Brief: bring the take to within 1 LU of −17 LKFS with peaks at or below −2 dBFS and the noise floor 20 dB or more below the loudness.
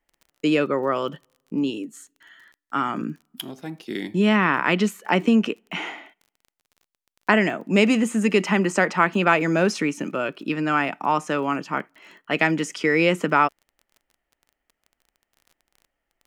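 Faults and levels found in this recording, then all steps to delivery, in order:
crackle rate 25 per second; integrated loudness −22.0 LKFS; sample peak −3.0 dBFS; target loudness −17.0 LKFS
→ click removal
level +5 dB
brickwall limiter −2 dBFS

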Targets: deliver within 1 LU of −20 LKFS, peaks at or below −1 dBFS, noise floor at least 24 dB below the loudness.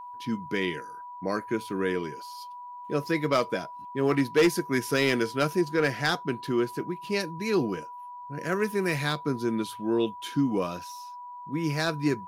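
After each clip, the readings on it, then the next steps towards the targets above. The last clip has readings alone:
share of clipped samples 0.3%; peaks flattened at −15.5 dBFS; interfering tone 980 Hz; level of the tone −39 dBFS; integrated loudness −28.0 LKFS; sample peak −15.5 dBFS; target loudness −20.0 LKFS
→ clipped peaks rebuilt −15.5 dBFS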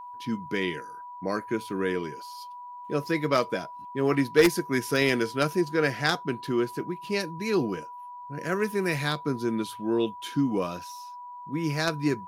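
share of clipped samples 0.0%; interfering tone 980 Hz; level of the tone −39 dBFS
→ notch filter 980 Hz, Q 30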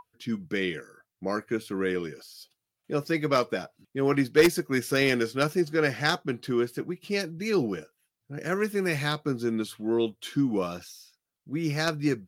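interfering tone none found; integrated loudness −28.0 LKFS; sample peak −6.5 dBFS; target loudness −20.0 LKFS
→ level +8 dB
brickwall limiter −1 dBFS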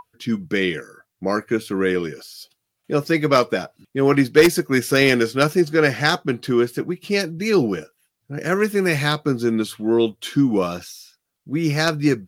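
integrated loudness −20.0 LKFS; sample peak −1.0 dBFS; background noise floor −78 dBFS

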